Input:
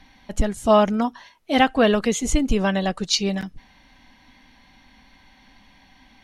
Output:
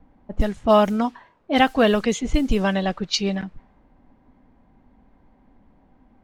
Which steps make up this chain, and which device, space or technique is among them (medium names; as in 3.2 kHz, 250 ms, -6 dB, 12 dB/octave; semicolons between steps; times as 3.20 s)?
cassette deck with a dynamic noise filter (white noise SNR 28 dB; level-controlled noise filter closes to 570 Hz, open at -14 dBFS)